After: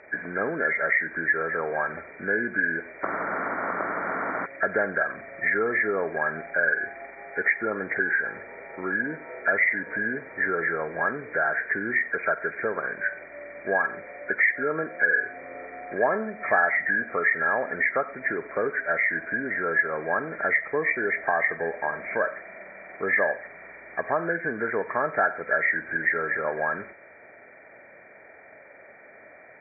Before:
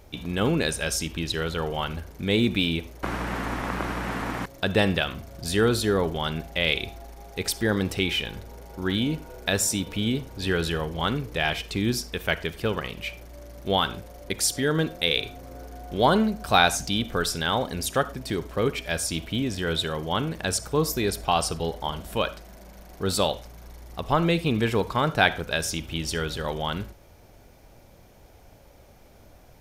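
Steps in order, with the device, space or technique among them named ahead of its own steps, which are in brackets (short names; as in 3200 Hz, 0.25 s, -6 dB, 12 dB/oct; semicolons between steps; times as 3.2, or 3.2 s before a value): hearing aid with frequency lowering (nonlinear frequency compression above 1300 Hz 4:1; compressor 2.5:1, threshold -28 dBFS, peak gain reduction 10.5 dB; speaker cabinet 270–6600 Hz, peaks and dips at 430 Hz +4 dB, 630 Hz +9 dB, 1200 Hz +4 dB, 1800 Hz +9 dB)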